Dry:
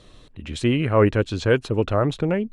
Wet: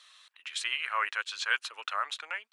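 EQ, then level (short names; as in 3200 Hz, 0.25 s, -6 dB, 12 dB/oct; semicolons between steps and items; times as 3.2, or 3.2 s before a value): HPF 1200 Hz 24 dB/oct; 0.0 dB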